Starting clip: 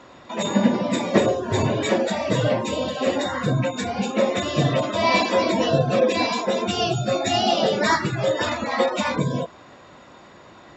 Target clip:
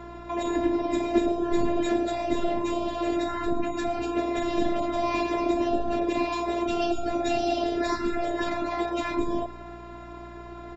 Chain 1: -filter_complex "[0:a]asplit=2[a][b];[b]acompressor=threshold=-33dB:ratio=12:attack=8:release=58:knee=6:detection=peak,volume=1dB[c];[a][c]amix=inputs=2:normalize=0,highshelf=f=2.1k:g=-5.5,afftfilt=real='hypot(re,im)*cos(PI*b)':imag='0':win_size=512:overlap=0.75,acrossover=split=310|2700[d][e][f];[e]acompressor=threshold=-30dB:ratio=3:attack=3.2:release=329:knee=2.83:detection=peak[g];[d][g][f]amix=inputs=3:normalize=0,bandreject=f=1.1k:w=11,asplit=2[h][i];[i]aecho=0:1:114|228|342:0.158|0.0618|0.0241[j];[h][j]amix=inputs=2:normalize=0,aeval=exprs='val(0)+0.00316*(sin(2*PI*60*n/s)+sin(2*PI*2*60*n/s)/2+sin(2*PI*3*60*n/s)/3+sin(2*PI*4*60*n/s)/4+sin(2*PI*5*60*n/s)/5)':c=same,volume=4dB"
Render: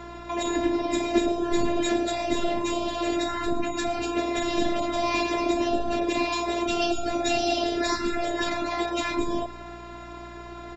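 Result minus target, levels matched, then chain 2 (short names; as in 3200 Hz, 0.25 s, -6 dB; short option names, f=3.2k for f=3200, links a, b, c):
4000 Hz band +6.0 dB
-filter_complex "[0:a]asplit=2[a][b];[b]acompressor=threshold=-33dB:ratio=12:attack=8:release=58:knee=6:detection=peak,volume=1dB[c];[a][c]amix=inputs=2:normalize=0,highshelf=f=2.1k:g=-15,afftfilt=real='hypot(re,im)*cos(PI*b)':imag='0':win_size=512:overlap=0.75,acrossover=split=310|2700[d][e][f];[e]acompressor=threshold=-30dB:ratio=3:attack=3.2:release=329:knee=2.83:detection=peak[g];[d][g][f]amix=inputs=3:normalize=0,bandreject=f=1.1k:w=11,asplit=2[h][i];[i]aecho=0:1:114|228|342:0.158|0.0618|0.0241[j];[h][j]amix=inputs=2:normalize=0,aeval=exprs='val(0)+0.00316*(sin(2*PI*60*n/s)+sin(2*PI*2*60*n/s)/2+sin(2*PI*3*60*n/s)/3+sin(2*PI*4*60*n/s)/4+sin(2*PI*5*60*n/s)/5)':c=same,volume=4dB"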